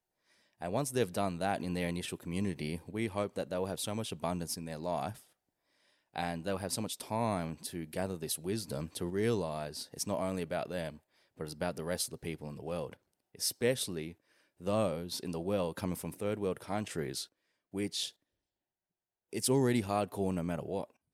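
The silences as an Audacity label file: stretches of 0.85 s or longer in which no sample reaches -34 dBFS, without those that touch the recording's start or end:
5.110000	6.160000	silence
18.060000	19.330000	silence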